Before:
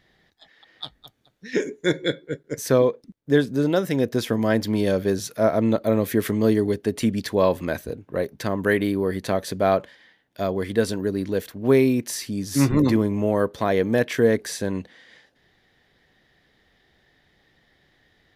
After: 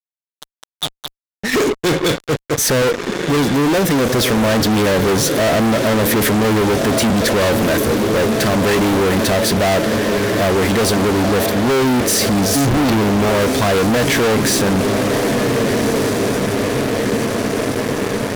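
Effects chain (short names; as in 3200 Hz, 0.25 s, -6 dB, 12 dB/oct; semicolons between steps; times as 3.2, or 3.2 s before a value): diffused feedback echo 1.543 s, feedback 70%, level -14.5 dB; fuzz box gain 40 dB, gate -41 dBFS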